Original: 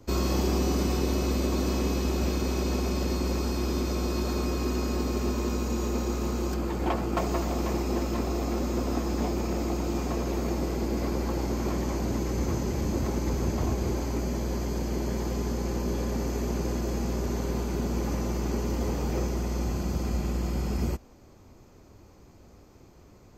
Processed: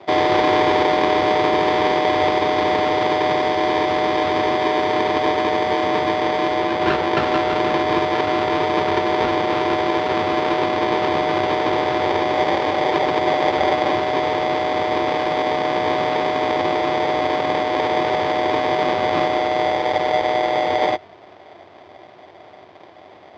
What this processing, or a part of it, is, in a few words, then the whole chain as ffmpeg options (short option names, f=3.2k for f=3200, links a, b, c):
ring modulator pedal into a guitar cabinet: -af "aeval=exprs='val(0)*sgn(sin(2*PI*680*n/s))':c=same,highpass=93,equalizer=f=93:t=q:w=4:g=10,equalizer=f=360:t=q:w=4:g=8,equalizer=f=680:t=q:w=4:g=5,lowpass=f=4.1k:w=0.5412,lowpass=f=4.1k:w=1.3066,volume=6.5dB"